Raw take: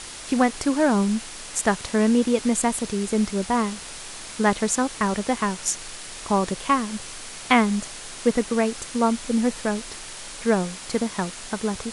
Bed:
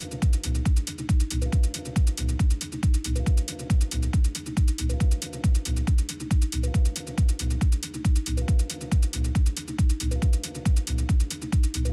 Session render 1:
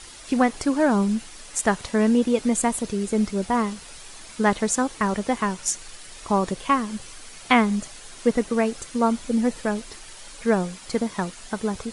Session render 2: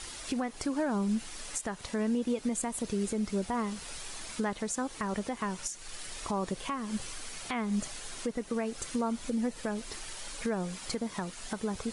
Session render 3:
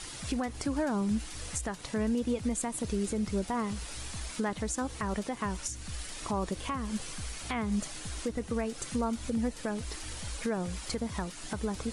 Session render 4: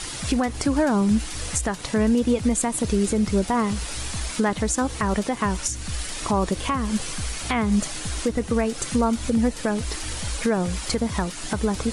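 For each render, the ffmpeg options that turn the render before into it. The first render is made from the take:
-af "afftdn=nr=8:nf=-38"
-af "acompressor=threshold=0.0562:ratio=2.5,alimiter=limit=0.075:level=0:latency=1:release=321"
-filter_complex "[1:a]volume=0.1[s0];[0:a][s0]amix=inputs=2:normalize=0"
-af "volume=3.16"

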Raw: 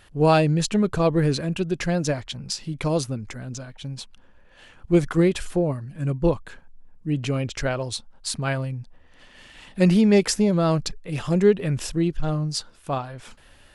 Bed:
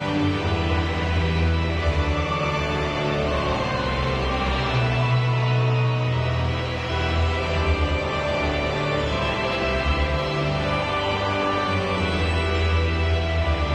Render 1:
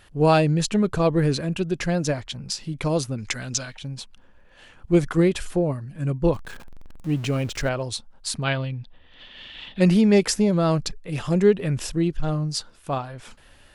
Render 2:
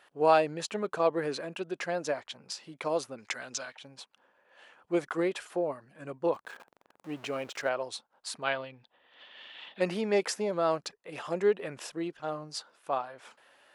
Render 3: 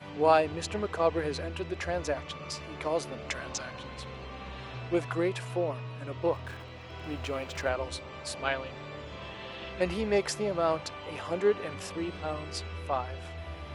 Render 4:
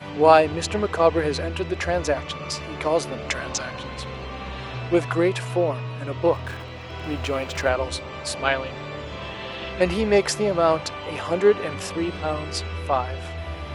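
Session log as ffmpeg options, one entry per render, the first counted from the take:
-filter_complex "[0:a]asettb=1/sr,asplit=3[s0][s1][s2];[s0]atrim=end=3.184[s3];[s1]atrim=start=3.18:end=3.79,asetpts=PTS-STARTPTS,afade=t=in:d=0.004:c=qsin,afade=t=out:st=0.606:d=0.004:c=qsin,equalizer=f=4300:w=0.31:g=14.5[s4];[s2]atrim=start=3.786[s5];[s3][s4]acrossfade=d=0.004:c1=hsin:c2=qsin[s6];[s6][s5]acrossfade=d=0.004:c1=qsin:c2=hsin,asettb=1/sr,asplit=3[s7][s8][s9];[s7]atrim=end=6.344[s10];[s8]atrim=start=6.34:end=7.69,asetpts=PTS-STARTPTS,afade=t=in:d=0.004:c=qsin,afade=t=out:st=1.346:d=0.004:c=qsin,aeval=exprs='val(0)+0.5*0.0133*sgn(val(0))':c=same[s11];[s9]atrim=start=7.686[s12];[s10][s11]acrossfade=d=0.004:c1=hsin:c2=qsin[s13];[s13][s12]acrossfade=d=0.004:c1=qsin:c2=hsin,asettb=1/sr,asplit=3[s14][s15][s16];[s14]atrim=end=8.434[s17];[s15]atrim=start=8.43:end=9.81,asetpts=PTS-STARTPTS,afade=t=in:d=0.004:c=qsin,afade=t=out:st=1.376:d=0.004:c=qsin,lowpass=f=3500:t=q:w=4.2[s18];[s16]atrim=start=9.806[s19];[s17][s18]acrossfade=d=0.004:c1=hsin:c2=qsin[s20];[s20][s19]acrossfade=d=0.004:c1=qsin:c2=hsin"
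-af "highpass=590,highshelf=f=2100:g=-11.5"
-filter_complex "[1:a]volume=0.112[s0];[0:a][s0]amix=inputs=2:normalize=0"
-af "volume=2.66"

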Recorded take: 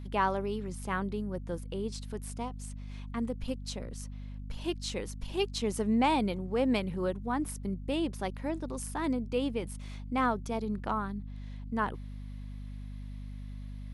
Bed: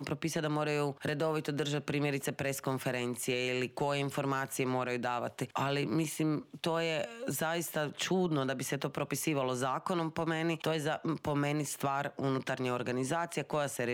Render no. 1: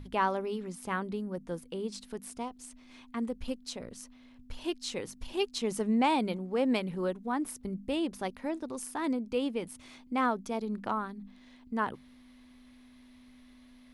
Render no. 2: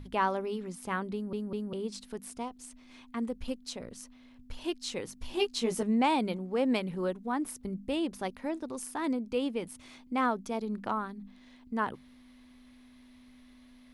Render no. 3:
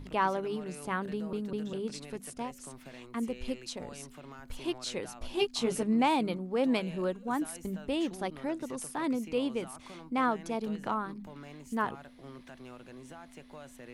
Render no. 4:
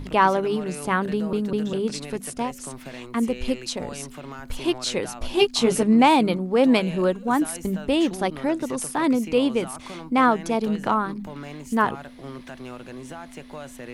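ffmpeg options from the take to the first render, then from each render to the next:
-af "bandreject=f=50:t=h:w=6,bandreject=f=100:t=h:w=6,bandreject=f=150:t=h:w=6,bandreject=f=200:t=h:w=6"
-filter_complex "[0:a]asettb=1/sr,asplit=3[s0][s1][s2];[s0]atrim=end=5.224[s3];[s1]atrim=start=5.22:end=5.83,asetpts=PTS-STARTPTS,afade=t=in:d=0.004:c=qsin,afade=t=out:st=0.606:d=0.004:c=qsin,asplit=2[s4][s5];[s5]adelay=17,volume=0.668[s6];[s4][s6]amix=inputs=2:normalize=0,atrim=end_sample=26901[s7];[s2]atrim=start=5.826[s8];[s3][s7]acrossfade=d=0.004:c1=hsin:c2=qsin[s9];[s9][s8]acrossfade=d=0.004:c1=qsin:c2=hsin,asplit=4[s10][s11][s12][s13];[s10]atrim=end=1.332[s14];[s11]atrim=start=1.128:end=1.332[s15];[s12]atrim=start=1.128:end=1.332[s16];[s13]atrim=start=1.728[s17];[s14][s15]acrossfade=d=0.004:c1=hsin:c2=hsin[s18];[s18][s16]acrossfade=d=0.004:c1=hsin:c2=hsin[s19];[s19][s17]acrossfade=d=0.004:c1=hsin:c2=hsin"
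-filter_complex "[1:a]volume=0.158[s0];[0:a][s0]amix=inputs=2:normalize=0"
-af "volume=3.35"

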